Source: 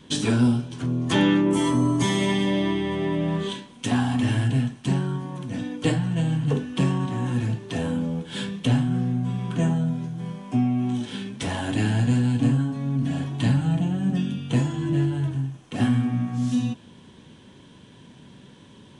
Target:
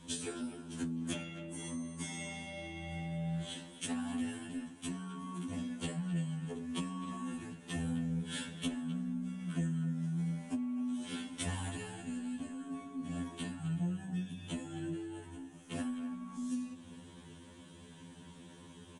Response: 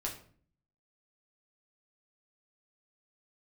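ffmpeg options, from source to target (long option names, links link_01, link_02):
-filter_complex "[0:a]highshelf=frequency=6400:width_type=q:width=1.5:gain=6.5,acompressor=threshold=-30dB:ratio=10,asplit=2[link_01][link_02];[link_02]adelay=260,highpass=300,lowpass=3400,asoftclip=type=hard:threshold=-27dB,volume=-12dB[link_03];[link_01][link_03]amix=inputs=2:normalize=0,afftfilt=real='re*2*eq(mod(b,4),0)':imag='im*2*eq(mod(b,4),0)':win_size=2048:overlap=0.75,volume=-2.5dB"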